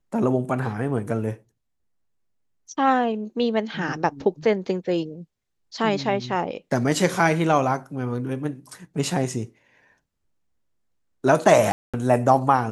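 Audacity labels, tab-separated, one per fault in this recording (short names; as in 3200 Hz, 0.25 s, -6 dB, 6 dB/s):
11.720000	11.940000	gap 0.216 s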